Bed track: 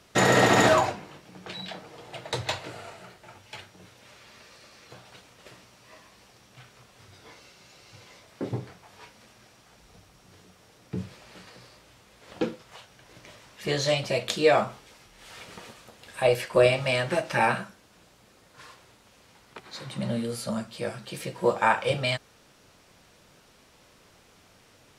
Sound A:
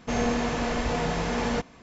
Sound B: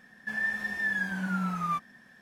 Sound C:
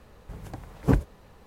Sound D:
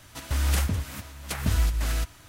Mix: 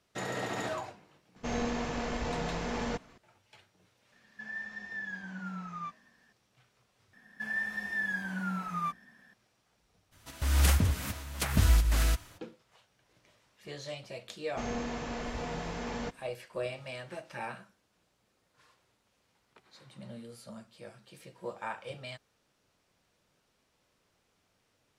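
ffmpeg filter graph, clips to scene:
-filter_complex "[1:a]asplit=2[a][b];[2:a]asplit=2[c][d];[0:a]volume=-16.5dB[e];[a]aeval=exprs='if(lt(val(0),0),0.708*val(0),val(0))':c=same[f];[c]aresample=16000,aresample=44100[g];[d]bandreject=f=60:t=h:w=6,bandreject=f=120:t=h:w=6,bandreject=f=180:t=h:w=6,bandreject=f=240:t=h:w=6,bandreject=f=300:t=h:w=6,bandreject=f=360:t=h:w=6,bandreject=f=420:t=h:w=6,bandreject=f=480:t=h:w=6,bandreject=f=540:t=h:w=6[h];[4:a]dynaudnorm=f=150:g=5:m=13dB[i];[e]asplit=2[j][k];[j]atrim=end=7.134[l];[h]atrim=end=2.21,asetpts=PTS-STARTPTS,volume=-3.5dB[m];[k]atrim=start=9.336[n];[f]atrim=end=1.82,asetpts=PTS-STARTPTS,volume=-6dB,afade=t=in:d=0.004:c=hsin,afade=t=out:st=1.816:d=0.004:c=hsin,adelay=1360[o];[g]atrim=end=2.21,asetpts=PTS-STARTPTS,volume=-10dB,afade=t=in:d=0.004:c=hsin,afade=t=out:st=2.206:d=0.004:c=hsin,adelay=4120[p];[i]atrim=end=2.28,asetpts=PTS-STARTPTS,volume=-10dB,afade=t=in:d=0.02,afade=t=out:st=2.26:d=0.02,adelay=10110[q];[b]atrim=end=1.82,asetpts=PTS-STARTPTS,volume=-10dB,afade=t=in:d=0.004:c=hsin,afade=t=out:st=1.816:d=0.004:c=hsin,adelay=14490[r];[l][m]acrossfade=d=0.004:c1=hsin:c2=hsin[s];[s][n]acrossfade=d=0.004:c1=hsin:c2=hsin[t];[t][o][p][q][r]amix=inputs=5:normalize=0"

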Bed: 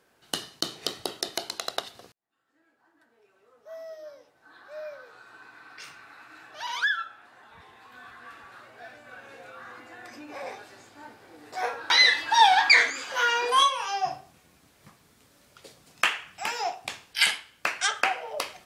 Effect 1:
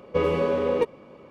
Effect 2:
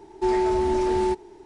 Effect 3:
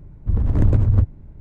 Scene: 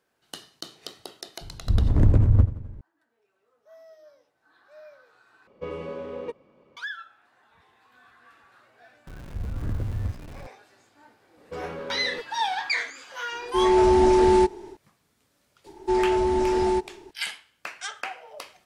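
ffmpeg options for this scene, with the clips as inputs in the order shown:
-filter_complex "[3:a]asplit=2[a][b];[1:a]asplit=2[c][d];[2:a]asplit=2[e][f];[0:a]volume=-9dB[g];[a]aecho=1:1:86|172|258|344|430|516:0.158|0.0935|0.0552|0.0326|0.0192|0.0113[h];[c]aresample=22050,aresample=44100[i];[b]aeval=exprs='val(0)+0.5*0.0841*sgn(val(0))':c=same[j];[d]volume=20.5dB,asoftclip=hard,volume=-20.5dB[k];[e]dynaudnorm=f=230:g=3:m=9.5dB[l];[g]asplit=2[m][n];[m]atrim=end=5.474[o];[i]atrim=end=1.3,asetpts=PTS-STARTPTS,volume=-11.5dB[p];[n]atrim=start=6.766[q];[h]atrim=end=1.4,asetpts=PTS-STARTPTS,volume=-1.5dB,afade=t=in:d=0.004:c=hsin,afade=t=out:st=1.396:d=0.004:c=hsin,adelay=1410[r];[j]atrim=end=1.4,asetpts=PTS-STARTPTS,volume=-14.5dB,afade=t=in:d=0.004:c=hsin,afade=t=out:st=1.396:d=0.004:c=hsin,adelay=9070[s];[k]atrim=end=1.3,asetpts=PTS-STARTPTS,volume=-11dB,afade=t=in:d=0.004:c=hsin,afade=t=out:st=1.296:d=0.004:c=hsin,adelay=11370[t];[l]atrim=end=1.45,asetpts=PTS-STARTPTS,volume=-3.5dB,afade=t=in:d=0.004:c=hsin,afade=t=out:st=1.446:d=0.004:c=hsin,adelay=587412S[u];[f]atrim=end=1.45,asetpts=PTS-STARTPTS,afade=t=in:d=0.004:c=hsin,afade=t=out:st=1.446:d=0.004:c=hsin,adelay=15660[v];[o][p]acrossfade=d=0.004:c1=hsin:c2=hsin[w];[w][q]acrossfade=d=0.004:c1=hsin:c2=hsin[x];[x][r][s][t][u][v]amix=inputs=6:normalize=0"

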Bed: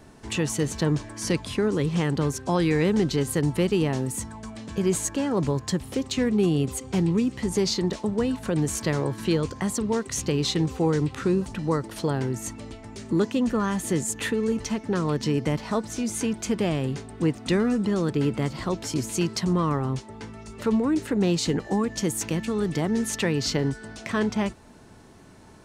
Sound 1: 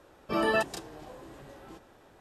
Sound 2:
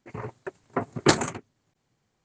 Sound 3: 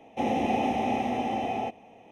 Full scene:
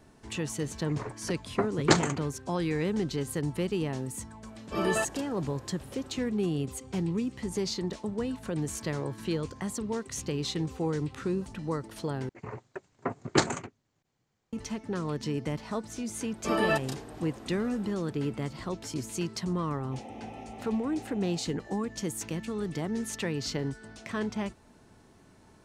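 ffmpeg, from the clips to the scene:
-filter_complex "[2:a]asplit=2[a][b];[1:a]asplit=2[c][d];[0:a]volume=-7.5dB,asplit=2[e][f];[e]atrim=end=12.294[g];[b]atrim=end=2.24,asetpts=PTS-STARTPTS,volume=-4.5dB[h];[f]atrim=start=14.526[i];[a]atrim=end=2.24,asetpts=PTS-STARTPTS,volume=-2.5dB,afade=t=in:d=0.004:c=hsin,afade=t=out:st=2.236:d=0.004:c=hsin,adelay=820[j];[c]atrim=end=2.2,asetpts=PTS-STARTPTS,volume=-3dB,afade=t=in:d=0.004:c=hsin,afade=t=out:st=2.196:d=0.004:c=hsin,adelay=4420[k];[d]atrim=end=2.2,asetpts=PTS-STARTPTS,volume=-0.5dB,afade=t=in:d=0.004:c=hsin,afade=t=out:st=2.196:d=0.004:c=hsin,adelay=16150[l];[3:a]atrim=end=2.11,asetpts=PTS-STARTPTS,volume=-18dB,afade=t=in:d=0.004:c=hsin,afade=t=out:st=2.106:d=0.004:c=hsin,adelay=19740[m];[g][h]acrossfade=d=0.004:c1=hsin:c2=hsin[n];[n][i]acrossfade=d=0.004:c1=hsin:c2=hsin[o];[o][j][k][l][m]amix=inputs=5:normalize=0"

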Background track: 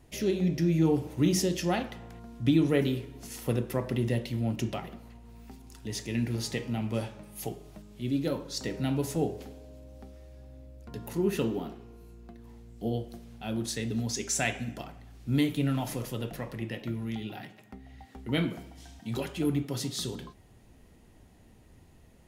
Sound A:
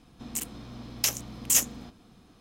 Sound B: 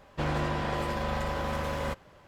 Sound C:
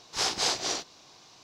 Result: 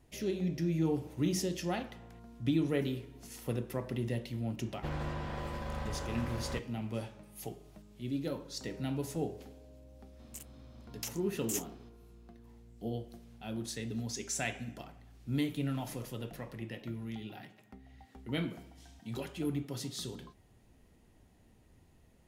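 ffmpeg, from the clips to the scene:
-filter_complex "[0:a]volume=-6.5dB[a];[2:a]lowshelf=f=160:g=7,atrim=end=2.27,asetpts=PTS-STARTPTS,volume=-10.5dB,afade=t=in:d=0.004:c=hsin,afade=t=out:st=2.266:d=0.004:c=hsin,adelay=205065S[b];[1:a]atrim=end=2.4,asetpts=PTS-STARTPTS,volume=-15dB,afade=t=in:d=0.004:c=hsin,afade=t=out:st=2.396:d=0.004:c=hsin,adelay=9990[c];[a][b][c]amix=inputs=3:normalize=0"

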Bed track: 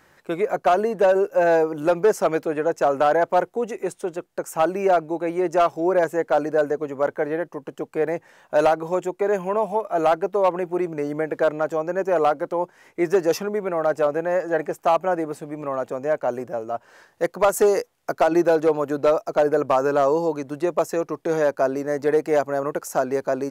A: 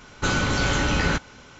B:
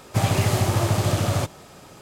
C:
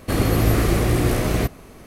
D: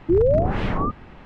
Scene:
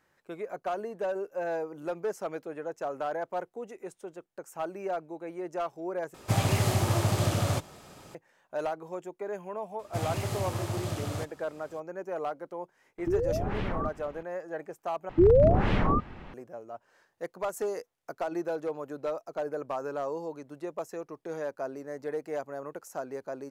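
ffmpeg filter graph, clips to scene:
-filter_complex "[2:a]asplit=2[a][b];[4:a]asplit=2[c][d];[0:a]volume=-14.5dB[e];[c]acompressor=threshold=-26dB:ratio=2.5:attack=73:release=38:knee=1:detection=rms[f];[e]asplit=3[g][h][i];[g]atrim=end=6.144[j];[a]atrim=end=2.01,asetpts=PTS-STARTPTS,volume=-5dB[k];[h]atrim=start=8.146:end=15.094[l];[d]atrim=end=1.25,asetpts=PTS-STARTPTS,volume=-1.5dB[m];[i]atrim=start=16.336[n];[b]atrim=end=2.01,asetpts=PTS-STARTPTS,volume=-12dB,afade=t=in:d=0.004:c=hsin,afade=t=out:st=2.006:d=0.004:c=hsin,adelay=9790[o];[f]atrim=end=1.25,asetpts=PTS-STARTPTS,volume=-7dB,afade=t=in:d=0.004:c=hsin,afade=t=out:st=1.246:d=0.004:c=hsin,adelay=12980[p];[j][k]acrossfade=d=0.004:c1=hsin:c2=hsin[q];[q][l]acrossfade=d=0.004:c1=hsin:c2=hsin[r];[r][m]acrossfade=d=0.004:c1=hsin:c2=hsin[s];[s][n]acrossfade=d=0.004:c1=hsin:c2=hsin[t];[t][o][p]amix=inputs=3:normalize=0"

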